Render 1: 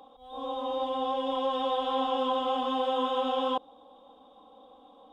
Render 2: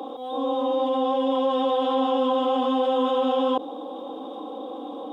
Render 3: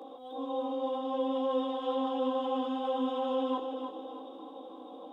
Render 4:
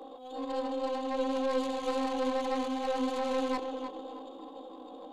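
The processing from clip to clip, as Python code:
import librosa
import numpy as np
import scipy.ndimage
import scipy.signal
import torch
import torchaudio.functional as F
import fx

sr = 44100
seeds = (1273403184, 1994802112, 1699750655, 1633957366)

y1 = scipy.signal.sosfilt(scipy.signal.butter(2, 240.0, 'highpass', fs=sr, output='sos'), x)
y1 = fx.peak_eq(y1, sr, hz=330.0, db=15.0, octaves=1.1)
y1 = fx.env_flatten(y1, sr, amount_pct=50)
y2 = fx.chorus_voices(y1, sr, voices=6, hz=0.59, base_ms=17, depth_ms=2.0, mix_pct=45)
y2 = fx.echo_feedback(y2, sr, ms=310, feedback_pct=40, wet_db=-7)
y2 = y2 * librosa.db_to_amplitude(-8.5)
y3 = fx.tracing_dist(y2, sr, depth_ms=0.19)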